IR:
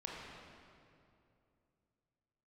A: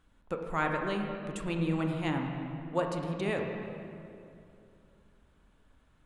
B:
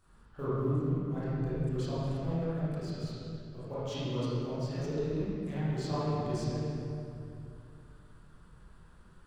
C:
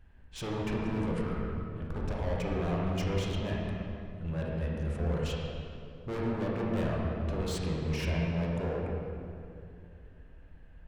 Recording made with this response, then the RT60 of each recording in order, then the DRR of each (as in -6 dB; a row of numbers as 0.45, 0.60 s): C; 2.6, 2.6, 2.6 s; 2.0, -12.5, -4.0 dB